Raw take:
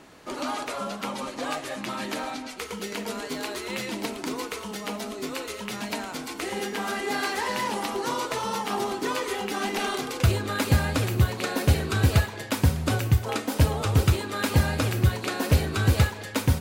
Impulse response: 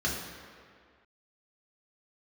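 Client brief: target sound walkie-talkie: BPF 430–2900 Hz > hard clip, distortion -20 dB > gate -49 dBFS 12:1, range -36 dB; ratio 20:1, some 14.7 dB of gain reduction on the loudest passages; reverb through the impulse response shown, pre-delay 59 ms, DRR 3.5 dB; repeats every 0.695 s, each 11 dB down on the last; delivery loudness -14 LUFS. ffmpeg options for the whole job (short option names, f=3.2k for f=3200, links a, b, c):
-filter_complex "[0:a]acompressor=threshold=-29dB:ratio=20,aecho=1:1:695|1390|2085:0.282|0.0789|0.0221,asplit=2[a][b];[1:a]atrim=start_sample=2205,adelay=59[c];[b][c]afir=irnorm=-1:irlink=0,volume=-12dB[d];[a][d]amix=inputs=2:normalize=0,highpass=430,lowpass=2.9k,asoftclip=type=hard:threshold=-27.5dB,agate=range=-36dB:threshold=-49dB:ratio=12,volume=21.5dB"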